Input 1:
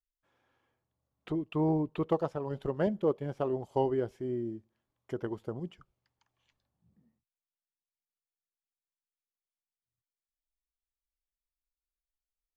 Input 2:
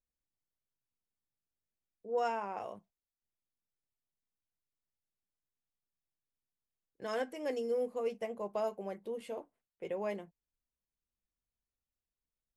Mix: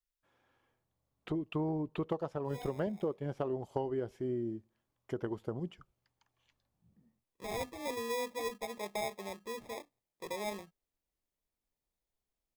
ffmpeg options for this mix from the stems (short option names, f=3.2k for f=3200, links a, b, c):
-filter_complex "[0:a]volume=0.5dB,asplit=2[a][b];[1:a]acrusher=samples=30:mix=1:aa=0.000001,adelay=400,volume=-2dB[c];[b]apad=whole_len=571934[d];[c][d]sidechaincompress=threshold=-44dB:ratio=4:attack=16:release=853[e];[a][e]amix=inputs=2:normalize=0,acompressor=threshold=-31dB:ratio=6"